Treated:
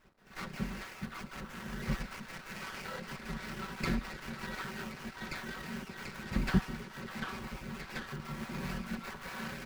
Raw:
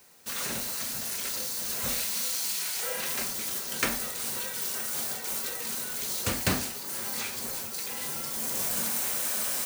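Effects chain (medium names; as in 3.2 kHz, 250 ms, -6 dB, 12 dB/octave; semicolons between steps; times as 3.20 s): random holes in the spectrogram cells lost 21%; amplifier tone stack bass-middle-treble 6-0-2; band-stop 3.7 kHz, Q 5.8; comb 5.3 ms, depth 75%; in parallel at +1 dB: peak limiter -36 dBFS, peak gain reduction 6.5 dB; on the sum: trance gate "x.x.x.xxxxx" 171 bpm -12 dB; phase dispersion lows, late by 44 ms, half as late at 1.2 kHz; companded quantiser 6-bit; distance through air 450 m; repeats whose band climbs or falls 739 ms, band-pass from 1.2 kHz, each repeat 0.7 oct, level -0.5 dB; sliding maximum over 9 samples; trim +16 dB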